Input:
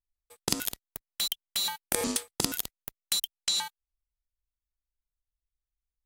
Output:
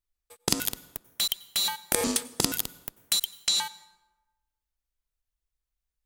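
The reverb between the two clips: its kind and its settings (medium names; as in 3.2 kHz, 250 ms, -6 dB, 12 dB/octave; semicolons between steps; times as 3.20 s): plate-style reverb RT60 1.1 s, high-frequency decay 0.6×, pre-delay 80 ms, DRR 19 dB; trim +3 dB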